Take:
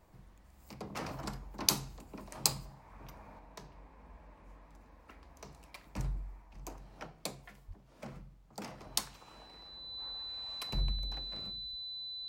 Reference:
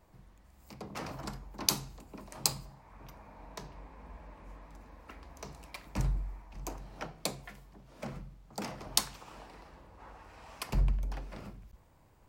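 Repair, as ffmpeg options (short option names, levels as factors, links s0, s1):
-filter_complex "[0:a]bandreject=f=4000:w=30,asplit=3[s0][s1][s2];[s0]afade=t=out:st=7.67:d=0.02[s3];[s1]highpass=f=140:w=0.5412,highpass=f=140:w=1.3066,afade=t=in:st=7.67:d=0.02,afade=t=out:st=7.79:d=0.02[s4];[s2]afade=t=in:st=7.79:d=0.02[s5];[s3][s4][s5]amix=inputs=3:normalize=0,asetnsamples=n=441:p=0,asendcmd='3.39 volume volume 5.5dB',volume=1"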